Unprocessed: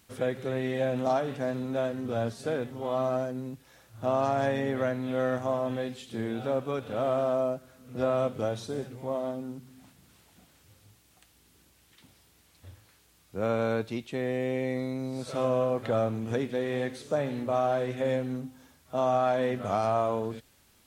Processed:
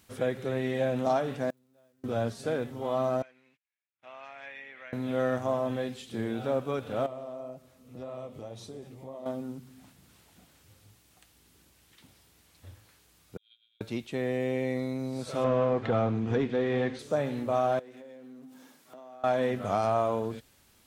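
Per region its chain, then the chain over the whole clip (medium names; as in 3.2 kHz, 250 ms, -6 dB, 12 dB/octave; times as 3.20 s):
1.50–2.04 s: zero-crossing glitches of -30.5 dBFS + inverted gate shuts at -29 dBFS, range -35 dB
3.22–4.93 s: gate -44 dBFS, range -29 dB + band-pass filter 2.3 kHz, Q 3.9
7.06–9.26 s: peaking EQ 1.5 kHz -12.5 dB 0.21 oct + compression 2.5:1, threshold -37 dBFS + flange 1.9 Hz, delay 5.5 ms, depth 7.7 ms, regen -58%
13.37–13.81 s: treble shelf 2.4 kHz -10.5 dB + frequency inversion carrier 3.8 kHz + gate -23 dBFS, range -46 dB
15.44–16.99 s: band-stop 580 Hz, Q 6.7 + waveshaping leveller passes 1 + distance through air 140 m
17.79–19.24 s: companding laws mixed up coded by mu + ladder high-pass 180 Hz, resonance 25% + compression 8:1, threshold -45 dBFS
whole clip: none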